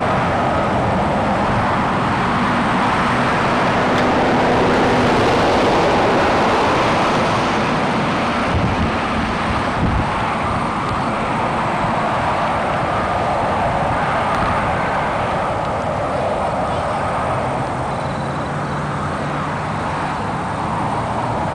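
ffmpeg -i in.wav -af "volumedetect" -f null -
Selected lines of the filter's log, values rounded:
mean_volume: -17.5 dB
max_volume: -11.5 dB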